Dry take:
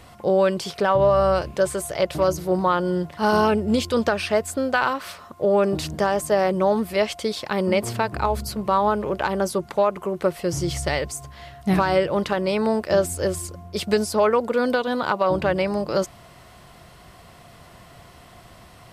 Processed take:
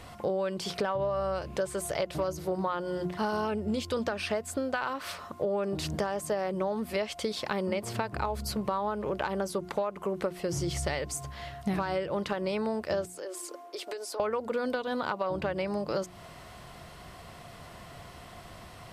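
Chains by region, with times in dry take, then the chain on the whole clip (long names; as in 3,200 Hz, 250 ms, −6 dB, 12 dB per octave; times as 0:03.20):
0:13.05–0:14.20: elliptic high-pass filter 300 Hz + downward compressor 10 to 1, threshold −34 dBFS
whole clip: high-shelf EQ 10,000 Hz −4 dB; mains-hum notches 60/120/180/240/300/360 Hz; downward compressor 6 to 1, threshold −28 dBFS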